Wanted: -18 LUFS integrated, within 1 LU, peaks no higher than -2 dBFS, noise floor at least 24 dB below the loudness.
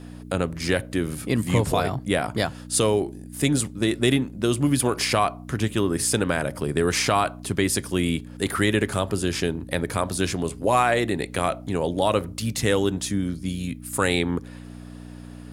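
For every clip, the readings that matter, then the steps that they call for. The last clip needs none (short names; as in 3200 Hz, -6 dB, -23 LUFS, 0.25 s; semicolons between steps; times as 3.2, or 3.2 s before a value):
hum 60 Hz; harmonics up to 300 Hz; hum level -37 dBFS; loudness -24.0 LUFS; peak -7.5 dBFS; loudness target -18.0 LUFS
-> de-hum 60 Hz, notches 5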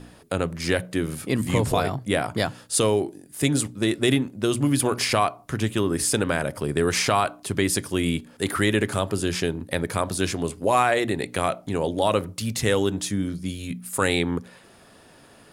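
hum none; loudness -24.5 LUFS; peak -7.5 dBFS; loudness target -18.0 LUFS
-> gain +6.5 dB; limiter -2 dBFS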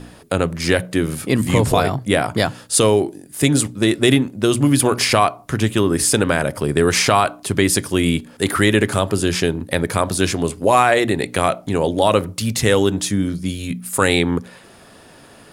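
loudness -18.0 LUFS; peak -2.0 dBFS; noise floor -45 dBFS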